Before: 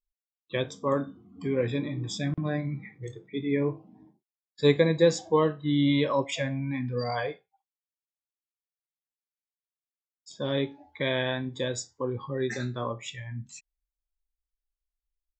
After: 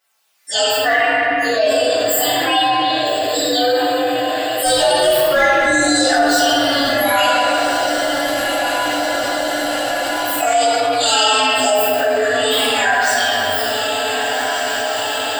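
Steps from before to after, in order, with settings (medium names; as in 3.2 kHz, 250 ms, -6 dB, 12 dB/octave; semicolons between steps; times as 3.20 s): frequency axis rescaled in octaves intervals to 130%; high-pass 940 Hz 12 dB/octave; level rider gain up to 13 dB; hard clipper -13 dBFS, distortion -20 dB; phaser 0.17 Hz, delay 3.2 ms, feedback 37%; echo that smears into a reverb 1494 ms, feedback 59%, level -14.5 dB; reverberation RT60 2.1 s, pre-delay 3 ms, DRR -12.5 dB; level flattener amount 70%; trim -8 dB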